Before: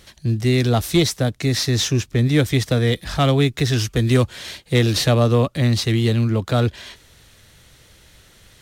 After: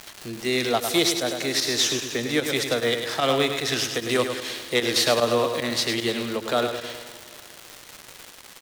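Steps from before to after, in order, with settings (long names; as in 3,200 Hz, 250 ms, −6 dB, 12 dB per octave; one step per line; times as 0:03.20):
high-pass filter 430 Hz 12 dB per octave
repeating echo 103 ms, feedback 52%, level −7.5 dB
four-comb reverb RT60 3.3 s, combs from 26 ms, DRR 15 dB
fake sidechain pumping 150 BPM, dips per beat 1, −11 dB, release 69 ms
surface crackle 420 per second −28 dBFS
every ending faded ahead of time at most 330 dB per second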